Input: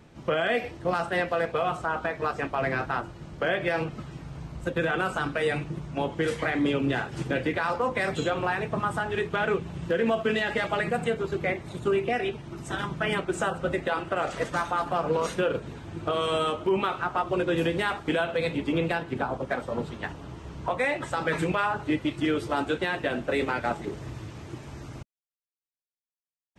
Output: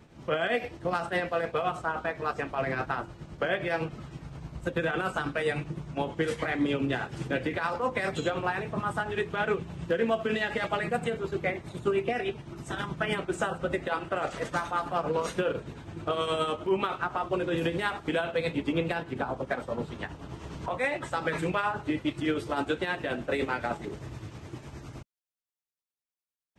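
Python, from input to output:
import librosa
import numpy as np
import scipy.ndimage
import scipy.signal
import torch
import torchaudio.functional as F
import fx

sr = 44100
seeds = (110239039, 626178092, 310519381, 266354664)

y = fx.tremolo_shape(x, sr, shape='triangle', hz=9.7, depth_pct=55)
y = fx.band_squash(y, sr, depth_pct=70, at=(19.95, 20.66))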